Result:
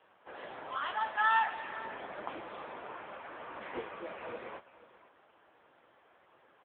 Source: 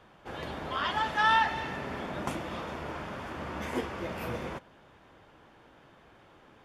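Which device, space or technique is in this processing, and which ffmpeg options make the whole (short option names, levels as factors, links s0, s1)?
satellite phone: -af "highpass=400,lowpass=3400,aecho=1:1:488:0.141,volume=0.794" -ar 8000 -c:a libopencore_amrnb -b:a 6700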